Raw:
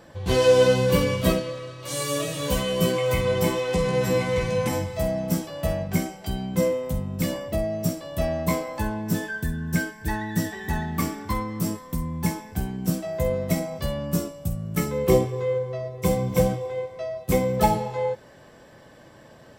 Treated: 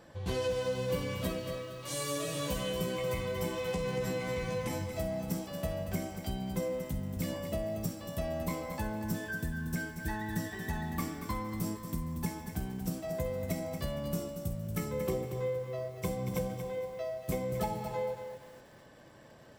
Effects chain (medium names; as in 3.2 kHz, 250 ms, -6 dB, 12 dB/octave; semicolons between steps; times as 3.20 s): compression, threshold -24 dBFS, peak gain reduction 11.5 dB; bit-crushed delay 232 ms, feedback 35%, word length 8-bit, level -8.5 dB; trim -6.5 dB